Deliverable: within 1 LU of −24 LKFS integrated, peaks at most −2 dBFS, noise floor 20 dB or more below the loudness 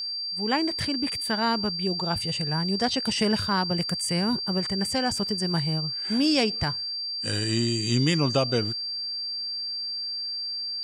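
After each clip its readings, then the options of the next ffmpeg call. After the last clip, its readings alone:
interfering tone 4,700 Hz; level of the tone −29 dBFS; integrated loudness −25.5 LKFS; sample peak −10.5 dBFS; target loudness −24.0 LKFS
→ -af "bandreject=frequency=4700:width=30"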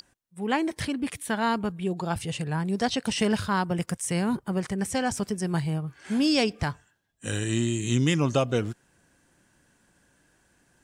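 interfering tone none found; integrated loudness −27.5 LKFS; sample peak −11.0 dBFS; target loudness −24.0 LKFS
→ -af "volume=3.5dB"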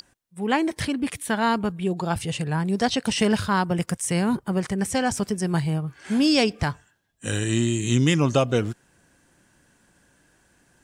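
integrated loudness −24.0 LKFS; sample peak −7.5 dBFS; background noise floor −63 dBFS

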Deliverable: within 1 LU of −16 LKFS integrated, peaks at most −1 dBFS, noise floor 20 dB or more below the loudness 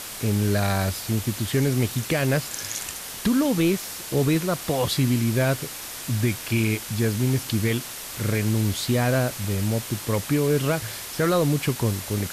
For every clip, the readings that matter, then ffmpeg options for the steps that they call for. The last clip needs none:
background noise floor −36 dBFS; target noise floor −44 dBFS; integrated loudness −24.0 LKFS; sample peak −12.0 dBFS; target loudness −16.0 LKFS
→ -af "afftdn=noise_reduction=8:noise_floor=-36"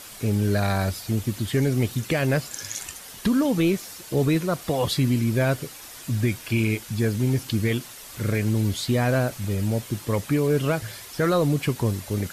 background noise floor −42 dBFS; target noise floor −45 dBFS
→ -af "afftdn=noise_reduction=6:noise_floor=-42"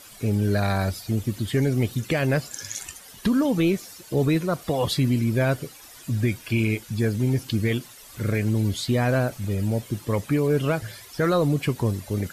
background noise floor −46 dBFS; integrated loudness −24.5 LKFS; sample peak −13.0 dBFS; target loudness −16.0 LKFS
→ -af "volume=8.5dB"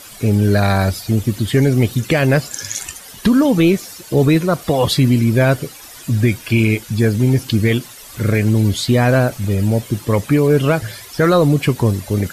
integrated loudness −16.0 LKFS; sample peak −4.5 dBFS; background noise floor −38 dBFS

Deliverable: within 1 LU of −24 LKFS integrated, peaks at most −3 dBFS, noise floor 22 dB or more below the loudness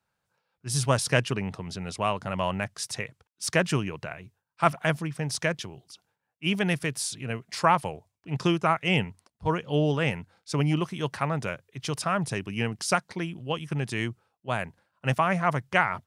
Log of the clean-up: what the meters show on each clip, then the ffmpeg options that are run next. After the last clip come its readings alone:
integrated loudness −28.0 LKFS; sample peak −6.0 dBFS; target loudness −24.0 LKFS
→ -af "volume=4dB,alimiter=limit=-3dB:level=0:latency=1"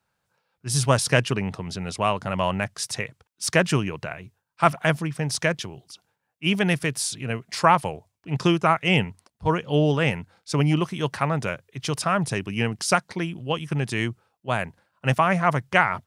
integrated loudness −24.0 LKFS; sample peak −3.0 dBFS; background noise floor −78 dBFS

